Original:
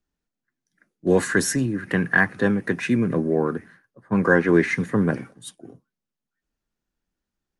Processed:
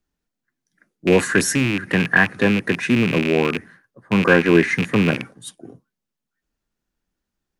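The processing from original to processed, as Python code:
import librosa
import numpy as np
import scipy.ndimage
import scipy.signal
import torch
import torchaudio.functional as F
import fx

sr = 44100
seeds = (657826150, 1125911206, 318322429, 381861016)

y = fx.rattle_buzz(x, sr, strikes_db=-30.0, level_db=-15.0)
y = F.gain(torch.from_numpy(y), 3.0).numpy()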